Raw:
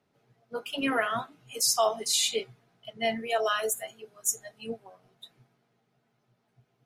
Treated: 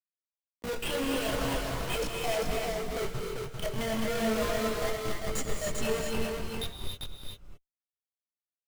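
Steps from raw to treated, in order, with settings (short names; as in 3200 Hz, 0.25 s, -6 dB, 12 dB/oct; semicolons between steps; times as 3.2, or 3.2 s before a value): reverb removal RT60 1.1 s; treble ducked by the level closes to 520 Hz, closed at -26 dBFS; bell 160 Hz +5 dB 1.8 oct; comb 1.9 ms, depth 44%; in parallel at +0.5 dB: compressor 6:1, threshold -45 dBFS, peak gain reduction 19.5 dB; on the sum: Schmitt trigger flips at -40.5 dBFS; chorus voices 6, 0.46 Hz, delay 19 ms, depth 3.8 ms; tempo 0.79×; on a send: echo 0.395 s -4 dB; on the sum: non-linear reverb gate 0.32 s rising, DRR 1.5 dB; gain +6 dB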